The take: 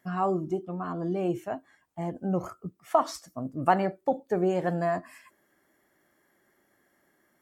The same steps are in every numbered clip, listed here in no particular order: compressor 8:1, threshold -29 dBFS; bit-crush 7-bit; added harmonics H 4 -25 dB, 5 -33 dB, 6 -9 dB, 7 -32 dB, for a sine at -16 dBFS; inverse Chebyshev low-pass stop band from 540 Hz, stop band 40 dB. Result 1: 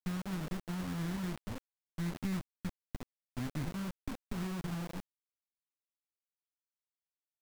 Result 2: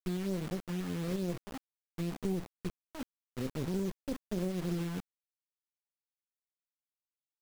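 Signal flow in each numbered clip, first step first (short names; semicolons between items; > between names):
added harmonics > compressor > inverse Chebyshev low-pass > bit-crush; inverse Chebyshev low-pass > added harmonics > bit-crush > compressor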